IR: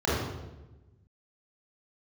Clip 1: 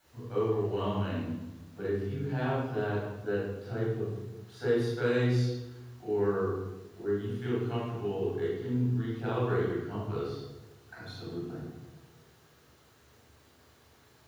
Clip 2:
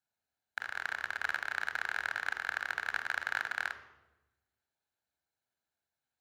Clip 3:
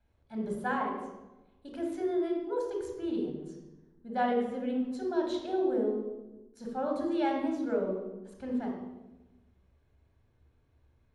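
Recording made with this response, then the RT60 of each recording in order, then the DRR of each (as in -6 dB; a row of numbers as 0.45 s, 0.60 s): 1; 1.1 s, 1.1 s, 1.1 s; -8.5 dB, 9.0 dB, 0.0 dB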